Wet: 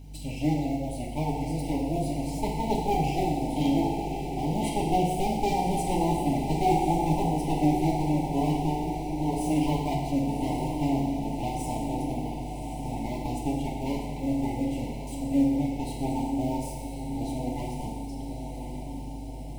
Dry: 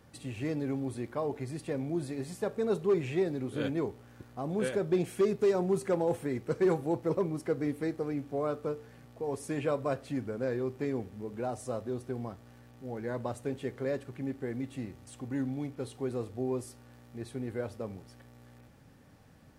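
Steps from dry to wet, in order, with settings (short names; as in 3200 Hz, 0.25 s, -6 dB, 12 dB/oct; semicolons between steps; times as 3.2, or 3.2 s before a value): minimum comb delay 1 ms; reverb removal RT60 1.2 s; bell 110 Hz -12.5 dB 0.22 oct; in parallel at -3.5 dB: short-mantissa float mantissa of 2-bit; on the sum: elliptic band-stop 850–2300 Hz, stop band 40 dB; bit-crush 12-bit; hum 50 Hz, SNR 11 dB; on a send: diffused feedback echo 1.108 s, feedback 61%, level -7 dB; on the sum: FDN reverb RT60 1.4 s, low-frequency decay 0.8×, high-frequency decay 0.95×, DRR -2.5 dB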